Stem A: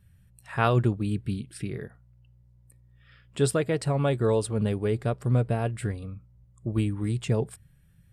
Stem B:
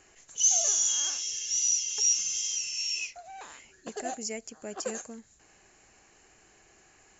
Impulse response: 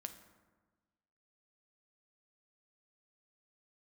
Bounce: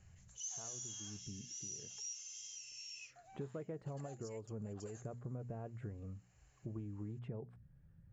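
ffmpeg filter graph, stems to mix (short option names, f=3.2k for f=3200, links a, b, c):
-filter_complex "[0:a]lowpass=1.1k,bandreject=f=60:t=h:w=6,bandreject=f=120:t=h:w=6,bandreject=f=180:t=h:w=6,bandreject=f=240:t=h:w=6,acompressor=threshold=-30dB:ratio=6,volume=-3dB[a];[1:a]highpass=f=460:w=0.5412,highpass=f=460:w=1.3066,volume=-14dB,asplit=2[b][c];[c]apad=whole_len=358397[d];[a][d]sidechaincompress=threshold=-49dB:ratio=8:attack=16:release=270[e];[e][b]amix=inputs=2:normalize=0,acompressor=threshold=-56dB:ratio=1.5"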